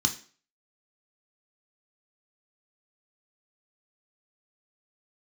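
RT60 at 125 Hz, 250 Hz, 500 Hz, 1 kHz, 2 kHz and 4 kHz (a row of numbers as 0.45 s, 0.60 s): 0.30 s, 0.45 s, 0.45 s, 0.40 s, 0.40 s, 0.40 s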